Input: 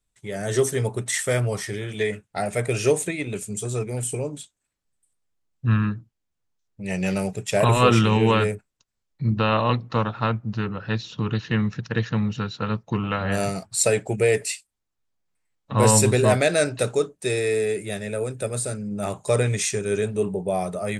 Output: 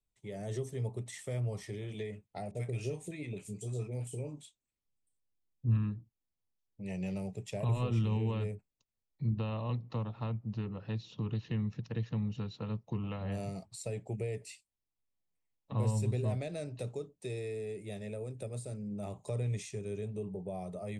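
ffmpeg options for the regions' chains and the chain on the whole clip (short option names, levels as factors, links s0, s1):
-filter_complex "[0:a]asettb=1/sr,asplit=3[s0][s1][s2];[s0]atrim=end=2.514[s3];[s1]atrim=start=2.51:end=5.77,asetpts=PTS-STARTPTS,afade=t=in:d=0.004:c=qsin,afade=t=out:st=3.256:d=0.004:c=qsin,asplit=2[s4][s5];[s5]adelay=26,volume=0.224[s6];[s4][s6]amix=inputs=2:normalize=0,atrim=end_sample=143766,acrossover=split=790[s7][s8];[s8]adelay=40[s9];[s7][s9]amix=inputs=2:normalize=0,atrim=end_sample=143766[s10];[s2]atrim=start=5.766[s11];[s3][s10]acrossfade=d=0.004:c1=hsin:c2=qsin[s12];[s12][s11]acrossfade=d=0.004:c1=qsin:c2=hsin,equalizer=f=1500:w=2.5:g=-13.5,acrossover=split=170[s13][s14];[s14]acompressor=threshold=0.0251:ratio=3[s15];[s13][s15]amix=inputs=2:normalize=0,highshelf=f=4400:g=-9,volume=0.376"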